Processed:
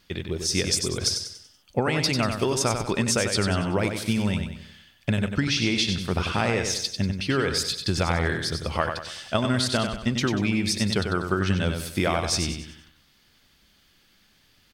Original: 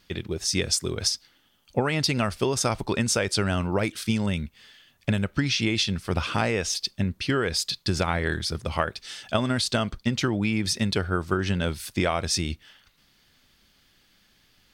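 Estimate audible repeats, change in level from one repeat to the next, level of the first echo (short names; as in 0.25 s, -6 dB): 4, -7.5 dB, -6.5 dB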